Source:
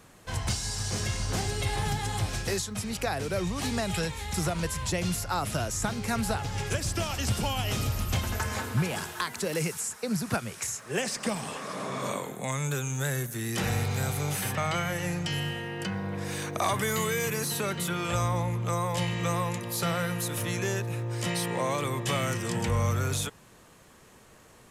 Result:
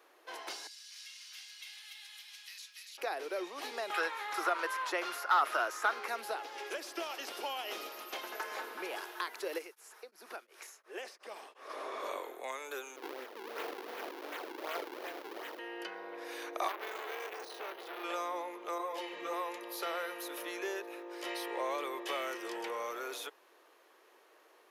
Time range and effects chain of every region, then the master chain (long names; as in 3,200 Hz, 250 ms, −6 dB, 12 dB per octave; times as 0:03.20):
0:00.67–0:02.98: four-pole ladder high-pass 2,000 Hz, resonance 20% + single-tap delay 288 ms −3 dB
0:03.90–0:06.08: Bessel high-pass filter 180 Hz, order 6 + parametric band 1,300 Hz +14 dB 1.2 octaves + gain into a clipping stage and back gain 15 dB
0:09.58–0:11.70: downward compressor 1.5 to 1, threshold −41 dBFS + tremolo along a rectified sine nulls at 2.8 Hz
0:12.96–0:15.59: lower of the sound and its delayed copy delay 4.4 ms + sample-and-hold swept by an LFO 41×, swing 160% 2.7 Hz
0:16.68–0:18.04: bad sample-rate conversion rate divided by 3×, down filtered, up hold + saturating transformer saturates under 2,000 Hz
0:18.78–0:19.33: low-shelf EQ 270 Hz +10.5 dB + string-ensemble chorus
whole clip: elliptic high-pass filter 340 Hz, stop band 60 dB; parametric band 7,900 Hz −14 dB 0.68 octaves; level −5.5 dB